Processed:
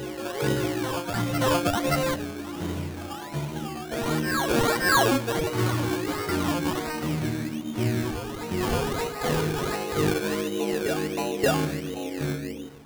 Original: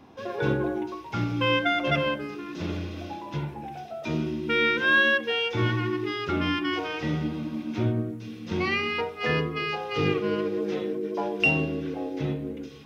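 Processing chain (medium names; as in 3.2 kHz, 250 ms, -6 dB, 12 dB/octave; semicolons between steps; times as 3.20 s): decimation with a swept rate 18×, swing 60% 1.4 Hz; reverse echo 575 ms -7 dB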